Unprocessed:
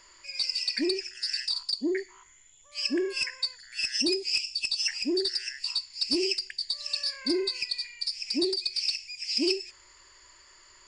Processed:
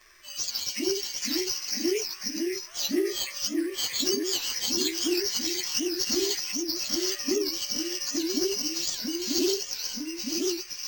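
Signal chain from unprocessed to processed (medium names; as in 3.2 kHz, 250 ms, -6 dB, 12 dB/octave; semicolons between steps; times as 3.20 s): frequency axis rescaled in octaves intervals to 108%; ever faster or slower copies 437 ms, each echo -1 st, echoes 3; careless resampling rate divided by 4×, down none, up hold; warped record 78 rpm, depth 160 cents; trim +3 dB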